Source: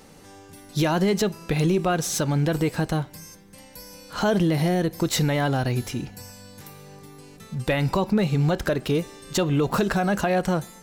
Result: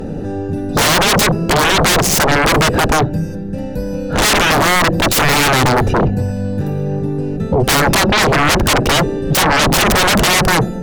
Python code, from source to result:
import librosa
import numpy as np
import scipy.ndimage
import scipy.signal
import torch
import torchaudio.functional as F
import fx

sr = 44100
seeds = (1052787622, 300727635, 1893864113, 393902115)

y = fx.wiener(x, sr, points=41)
y = fx.fold_sine(y, sr, drive_db=20, ceiling_db=-13.5)
y = F.gain(torch.from_numpy(y), 4.5).numpy()